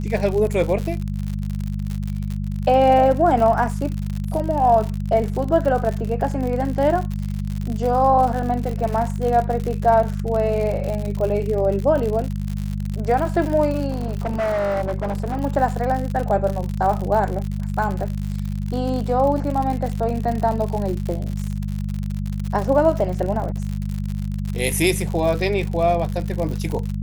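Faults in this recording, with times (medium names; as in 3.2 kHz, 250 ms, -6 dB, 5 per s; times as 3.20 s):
crackle 84 per s -25 dBFS
hum 50 Hz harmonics 4 -25 dBFS
13.90–15.40 s: clipped -19 dBFS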